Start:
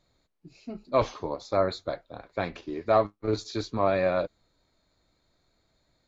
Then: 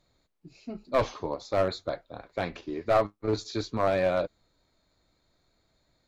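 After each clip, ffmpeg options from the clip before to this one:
ffmpeg -i in.wav -af "aeval=exprs='clip(val(0),-1,0.1)':channel_layout=same" out.wav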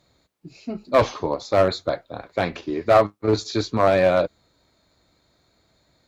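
ffmpeg -i in.wav -af "highpass=55,volume=8dB" out.wav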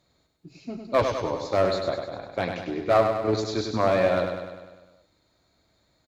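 ffmpeg -i in.wav -af "aecho=1:1:100|200|300|400|500|600|700|800:0.501|0.296|0.174|0.103|0.0607|0.0358|0.0211|0.0125,volume=-5dB" out.wav

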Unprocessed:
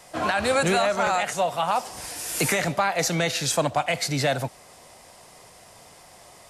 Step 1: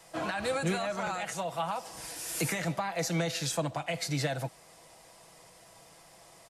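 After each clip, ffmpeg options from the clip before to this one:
ffmpeg -i in.wav -filter_complex "[0:a]acrossover=split=340[link_01][link_02];[link_02]acompressor=threshold=-24dB:ratio=6[link_03];[link_01][link_03]amix=inputs=2:normalize=0,aecho=1:1:6.1:0.47,volume=-7dB" out.wav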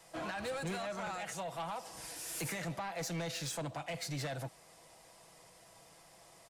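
ffmpeg -i in.wav -af "asoftclip=type=tanh:threshold=-30dB,volume=-4dB" out.wav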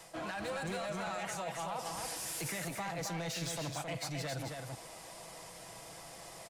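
ffmpeg -i in.wav -af "areverse,acompressor=threshold=-47dB:ratio=6,areverse,aecho=1:1:267:0.596,volume=8.5dB" out.wav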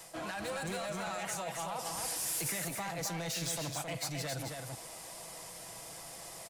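ffmpeg -i in.wav -af "crystalizer=i=1:c=0" out.wav

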